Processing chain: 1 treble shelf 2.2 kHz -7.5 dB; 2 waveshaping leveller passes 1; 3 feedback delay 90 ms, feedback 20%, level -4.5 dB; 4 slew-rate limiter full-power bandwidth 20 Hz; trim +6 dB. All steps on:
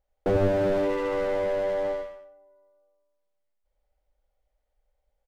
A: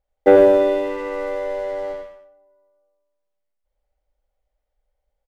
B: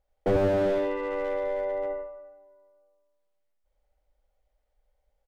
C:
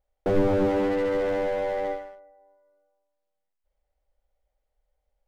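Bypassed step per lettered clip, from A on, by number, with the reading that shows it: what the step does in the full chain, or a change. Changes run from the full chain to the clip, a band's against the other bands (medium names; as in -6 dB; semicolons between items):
4, crest factor change +1.5 dB; 2, momentary loudness spread change +5 LU; 3, momentary loudness spread change +2 LU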